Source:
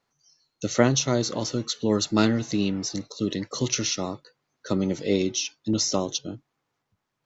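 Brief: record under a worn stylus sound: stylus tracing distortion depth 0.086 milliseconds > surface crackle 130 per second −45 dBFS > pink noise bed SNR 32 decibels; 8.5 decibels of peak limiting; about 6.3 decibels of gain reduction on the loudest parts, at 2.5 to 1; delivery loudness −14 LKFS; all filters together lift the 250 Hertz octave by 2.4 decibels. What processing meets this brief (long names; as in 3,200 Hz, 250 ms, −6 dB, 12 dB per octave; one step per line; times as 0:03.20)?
parametric band 250 Hz +3 dB
downward compressor 2.5 to 1, threshold −22 dBFS
brickwall limiter −17.5 dBFS
stylus tracing distortion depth 0.086 ms
surface crackle 130 per second −45 dBFS
pink noise bed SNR 32 dB
level +15.5 dB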